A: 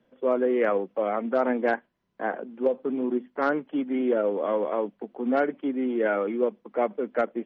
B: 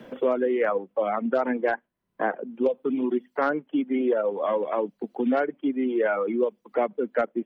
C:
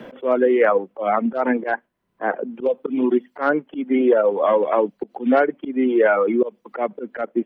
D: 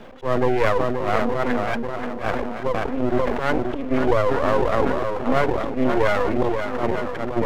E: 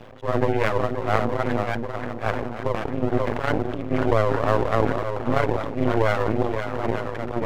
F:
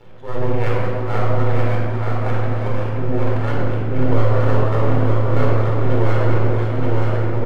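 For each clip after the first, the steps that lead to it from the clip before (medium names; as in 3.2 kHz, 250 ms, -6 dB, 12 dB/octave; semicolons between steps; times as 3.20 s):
reverb removal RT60 1.9 s; three bands compressed up and down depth 70%; trim +1.5 dB
tone controls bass -3 dB, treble -6 dB; slow attack 121 ms; trim +8 dB
shuffle delay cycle 885 ms, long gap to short 1.5:1, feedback 32%, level -7.5 dB; half-wave rectifier; decay stretcher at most 31 dB/s
AM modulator 110 Hz, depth 80%; trim +1.5 dB
delay 928 ms -4.5 dB; simulated room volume 2600 m³, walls mixed, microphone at 4.3 m; trim -7.5 dB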